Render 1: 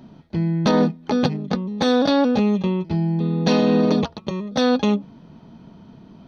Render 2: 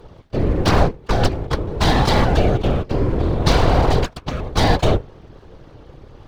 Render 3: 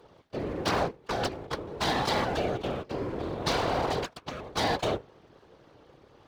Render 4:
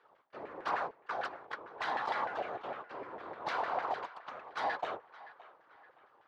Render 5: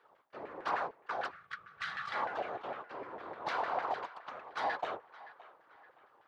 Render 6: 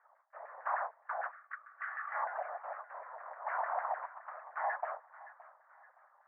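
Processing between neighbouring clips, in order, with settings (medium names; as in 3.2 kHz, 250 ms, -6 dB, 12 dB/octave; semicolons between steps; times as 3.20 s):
full-wave rectifier; whisper effect; trim +4 dB
high-pass 360 Hz 6 dB/octave; trim -8 dB
LFO band-pass saw down 6.6 Hz 760–1800 Hz; band-passed feedback delay 568 ms, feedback 46%, band-pass 1.6 kHz, level -16 dB
time-frequency box 1.31–2.13 s, 210–1100 Hz -20 dB
elliptic band-pass 620–1900 Hz, stop band 40 dB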